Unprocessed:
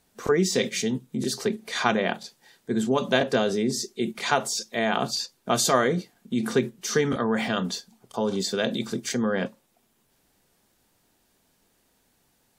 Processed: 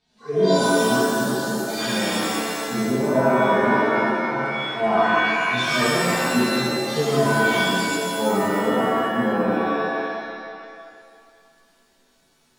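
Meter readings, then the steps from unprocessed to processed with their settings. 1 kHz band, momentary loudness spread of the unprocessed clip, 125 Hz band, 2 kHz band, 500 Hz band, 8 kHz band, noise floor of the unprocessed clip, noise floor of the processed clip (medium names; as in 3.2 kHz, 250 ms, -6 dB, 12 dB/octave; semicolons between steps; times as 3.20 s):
+8.5 dB, 8 LU, +4.0 dB, +8.5 dB, +5.5 dB, 0.0 dB, -68 dBFS, -62 dBFS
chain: harmonic-percussive separation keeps harmonic; LFO low-pass square 0.19 Hz 910–4100 Hz; pitch-shifted reverb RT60 2 s, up +7 st, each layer -2 dB, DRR -10 dB; trim -6 dB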